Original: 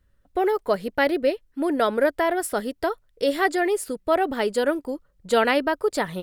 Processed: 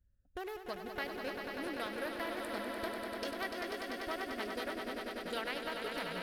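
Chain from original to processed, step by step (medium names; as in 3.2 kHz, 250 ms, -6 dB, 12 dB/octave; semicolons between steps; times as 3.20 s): local Wiener filter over 41 samples; amplifier tone stack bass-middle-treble 5-5-5; compression 2.5:1, threshold -48 dBFS, peak gain reduction 12.5 dB; on a send: echo with a slow build-up 98 ms, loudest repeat 5, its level -7 dB; on the sum: trim +6 dB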